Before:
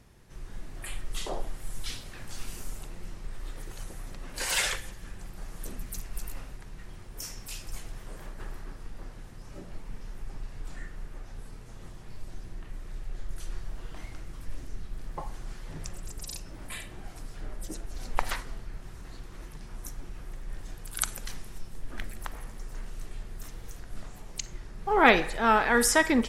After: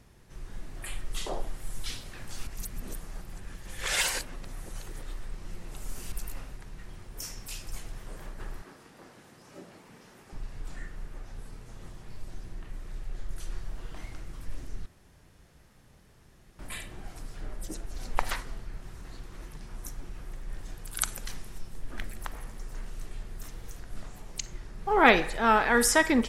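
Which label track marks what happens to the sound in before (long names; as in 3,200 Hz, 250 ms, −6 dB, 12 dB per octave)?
2.470000	6.120000	reverse
8.620000	10.330000	high-pass filter 210 Hz
14.860000	16.590000	fill with room tone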